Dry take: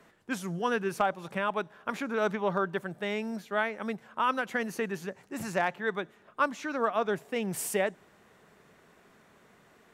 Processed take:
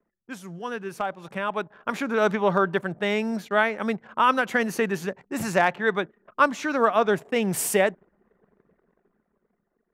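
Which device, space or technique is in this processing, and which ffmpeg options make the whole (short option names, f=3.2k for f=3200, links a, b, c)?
voice memo with heavy noise removal: -af "anlmdn=0.001,dynaudnorm=f=300:g=11:m=13.5dB,volume=-4.5dB"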